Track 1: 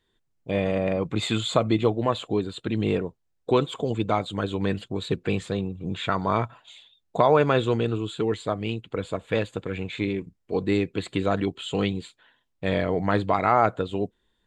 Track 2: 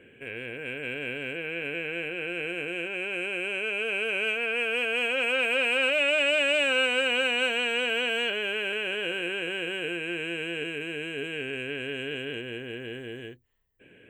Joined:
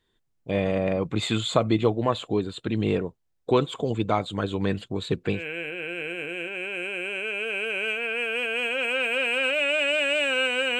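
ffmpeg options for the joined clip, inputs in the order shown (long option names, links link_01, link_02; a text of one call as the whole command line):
ffmpeg -i cue0.wav -i cue1.wav -filter_complex "[0:a]apad=whole_dur=10.79,atrim=end=10.79,atrim=end=5.44,asetpts=PTS-STARTPTS[link_01];[1:a]atrim=start=1.69:end=7.18,asetpts=PTS-STARTPTS[link_02];[link_01][link_02]acrossfade=duration=0.14:curve1=tri:curve2=tri" out.wav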